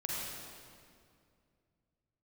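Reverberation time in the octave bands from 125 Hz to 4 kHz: 3.3 s, 2.8 s, 2.5 s, 2.1 s, 1.9 s, 1.7 s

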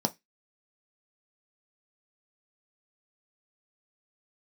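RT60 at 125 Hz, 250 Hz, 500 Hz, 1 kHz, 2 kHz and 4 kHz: 0.20 s, 0.20 s, 0.15 s, 0.15 s, 0.20 s, 0.20 s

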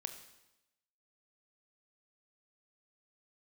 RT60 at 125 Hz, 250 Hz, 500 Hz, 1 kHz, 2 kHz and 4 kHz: 0.90 s, 1.0 s, 0.95 s, 0.90 s, 0.90 s, 0.90 s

